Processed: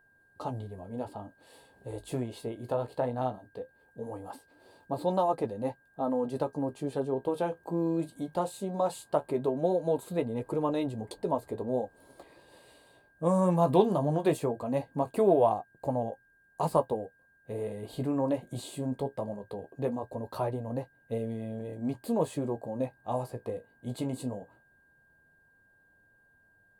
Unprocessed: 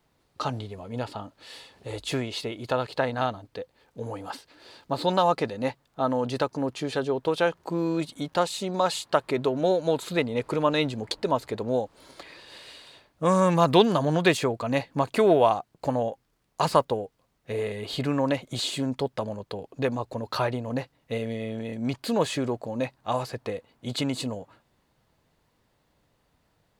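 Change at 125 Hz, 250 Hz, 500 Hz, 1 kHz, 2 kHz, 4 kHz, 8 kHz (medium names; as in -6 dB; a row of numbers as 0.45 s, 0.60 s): -4.0 dB, -3.5 dB, -4.0 dB, -6.0 dB, -15.5 dB, -17.5 dB, -9.5 dB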